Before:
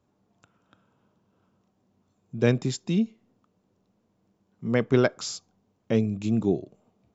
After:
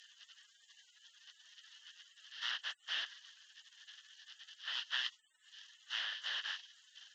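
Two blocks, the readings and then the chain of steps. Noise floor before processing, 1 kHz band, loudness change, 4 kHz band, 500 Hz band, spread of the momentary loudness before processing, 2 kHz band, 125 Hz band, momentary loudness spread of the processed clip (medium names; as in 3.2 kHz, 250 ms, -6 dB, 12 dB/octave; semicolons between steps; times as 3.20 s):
-72 dBFS, -12.0 dB, -13.5 dB, +3.0 dB, under -40 dB, 12 LU, -5.0 dB, under -40 dB, 20 LU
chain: one-bit delta coder 32 kbps, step -31 dBFS; spectral gate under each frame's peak -30 dB weak; two resonant band-passes 2.3 kHz, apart 0.78 oct; trim +11 dB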